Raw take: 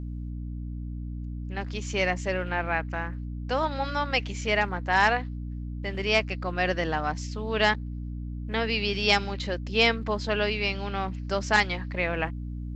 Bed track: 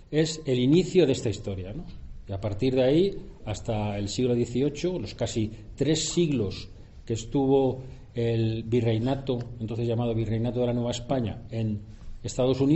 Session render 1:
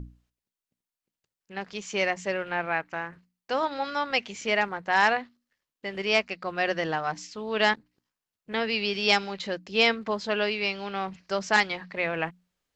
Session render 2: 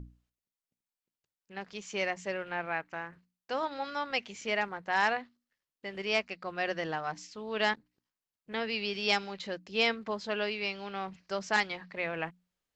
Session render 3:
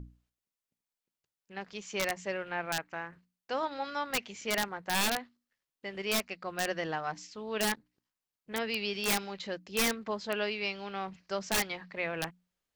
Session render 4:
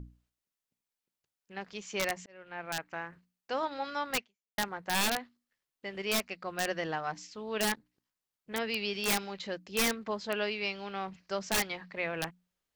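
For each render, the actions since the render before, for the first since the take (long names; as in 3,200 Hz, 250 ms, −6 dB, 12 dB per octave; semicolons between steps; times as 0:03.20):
mains-hum notches 60/120/180/240/300 Hz
level −6 dB
wrap-around overflow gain 21 dB
0:02.26–0:02.91: fade in; 0:04.18–0:04.58: fade out exponential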